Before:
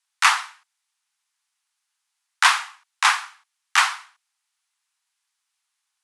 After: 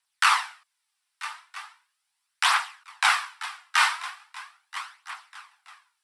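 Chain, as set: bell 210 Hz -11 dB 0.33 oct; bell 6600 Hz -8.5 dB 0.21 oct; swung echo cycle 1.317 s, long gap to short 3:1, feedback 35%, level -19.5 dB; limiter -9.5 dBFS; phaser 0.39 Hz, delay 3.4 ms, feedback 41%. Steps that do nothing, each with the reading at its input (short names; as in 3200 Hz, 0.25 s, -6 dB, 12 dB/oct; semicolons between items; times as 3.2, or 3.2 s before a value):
bell 210 Hz: input band starts at 640 Hz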